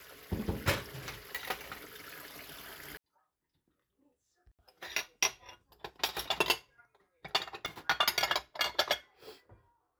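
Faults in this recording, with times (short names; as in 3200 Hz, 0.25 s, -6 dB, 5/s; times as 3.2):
7.66 pop -21 dBFS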